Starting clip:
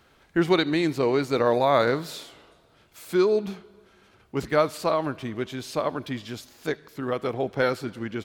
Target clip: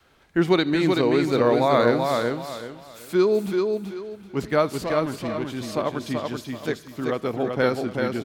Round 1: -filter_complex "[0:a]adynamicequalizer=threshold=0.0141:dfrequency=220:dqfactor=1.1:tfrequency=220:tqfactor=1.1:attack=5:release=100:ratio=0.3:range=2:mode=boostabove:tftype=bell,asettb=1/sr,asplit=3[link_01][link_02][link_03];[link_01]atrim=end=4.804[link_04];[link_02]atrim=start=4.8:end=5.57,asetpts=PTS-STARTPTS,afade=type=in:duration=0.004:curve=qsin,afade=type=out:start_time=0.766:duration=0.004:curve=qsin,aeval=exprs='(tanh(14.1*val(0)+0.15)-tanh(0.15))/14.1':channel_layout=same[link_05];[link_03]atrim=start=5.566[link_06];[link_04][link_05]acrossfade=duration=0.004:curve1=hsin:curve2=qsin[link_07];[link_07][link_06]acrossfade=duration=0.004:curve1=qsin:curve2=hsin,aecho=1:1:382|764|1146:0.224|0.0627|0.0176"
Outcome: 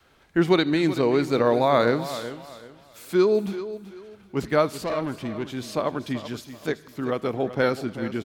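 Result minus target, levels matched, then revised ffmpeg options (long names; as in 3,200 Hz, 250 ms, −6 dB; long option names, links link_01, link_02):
echo-to-direct −9 dB
-filter_complex "[0:a]adynamicequalizer=threshold=0.0141:dfrequency=220:dqfactor=1.1:tfrequency=220:tqfactor=1.1:attack=5:release=100:ratio=0.3:range=2:mode=boostabove:tftype=bell,asettb=1/sr,asplit=3[link_01][link_02][link_03];[link_01]atrim=end=4.804[link_04];[link_02]atrim=start=4.8:end=5.57,asetpts=PTS-STARTPTS,afade=type=in:duration=0.004:curve=qsin,afade=type=out:start_time=0.766:duration=0.004:curve=qsin,aeval=exprs='(tanh(14.1*val(0)+0.15)-tanh(0.15))/14.1':channel_layout=same[link_05];[link_03]atrim=start=5.566[link_06];[link_04][link_05]acrossfade=duration=0.004:curve1=hsin:curve2=qsin[link_07];[link_07][link_06]acrossfade=duration=0.004:curve1=qsin:curve2=hsin,aecho=1:1:382|764|1146|1528:0.631|0.177|0.0495|0.0139"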